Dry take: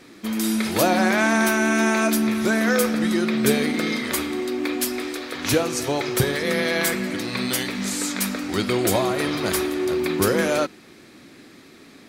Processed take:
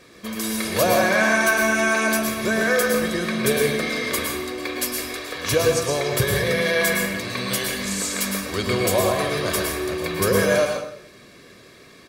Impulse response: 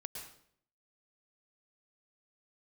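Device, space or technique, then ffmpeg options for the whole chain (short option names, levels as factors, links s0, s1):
microphone above a desk: -filter_complex "[0:a]aecho=1:1:1.8:0.55[s0];[1:a]atrim=start_sample=2205[s1];[s0][s1]afir=irnorm=-1:irlink=0,volume=1.41"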